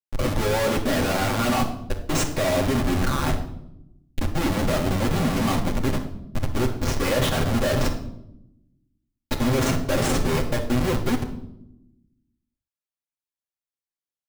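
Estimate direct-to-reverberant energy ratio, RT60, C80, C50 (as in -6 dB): -11.0 dB, 0.80 s, 12.0 dB, 9.0 dB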